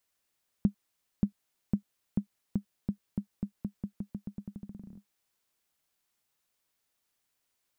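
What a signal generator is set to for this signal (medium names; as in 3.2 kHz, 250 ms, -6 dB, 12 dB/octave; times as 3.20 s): bouncing ball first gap 0.58 s, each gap 0.87, 202 Hz, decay 94 ms -13.5 dBFS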